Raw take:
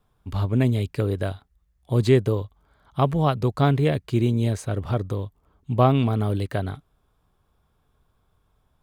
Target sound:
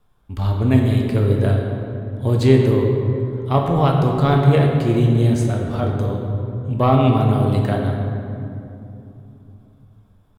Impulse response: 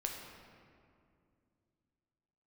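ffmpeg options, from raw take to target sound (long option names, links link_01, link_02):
-filter_complex "[0:a]acontrast=36,atempo=0.85[link_01];[1:a]atrim=start_sample=2205,asetrate=34839,aresample=44100[link_02];[link_01][link_02]afir=irnorm=-1:irlink=0,volume=-2.5dB"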